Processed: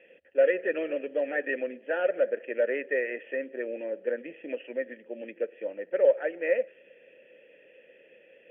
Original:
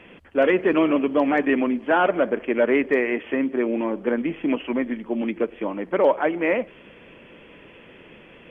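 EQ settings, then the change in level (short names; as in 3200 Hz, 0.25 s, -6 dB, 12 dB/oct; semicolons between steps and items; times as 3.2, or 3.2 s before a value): vowel filter e; dynamic EQ 1400 Hz, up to +7 dB, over -49 dBFS, Q 1.9; 0.0 dB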